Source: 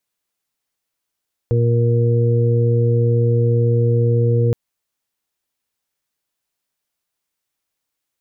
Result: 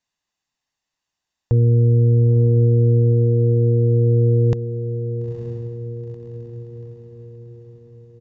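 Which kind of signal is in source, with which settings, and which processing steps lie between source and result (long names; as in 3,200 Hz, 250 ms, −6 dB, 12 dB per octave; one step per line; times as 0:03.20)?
steady harmonic partials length 3.02 s, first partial 118 Hz, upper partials −14/−13.5/−6 dB, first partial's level −13.5 dB
feedback delay with all-pass diffusion 928 ms, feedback 55%, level −9 dB
downsampling to 16,000 Hz
comb filter 1.1 ms, depth 43%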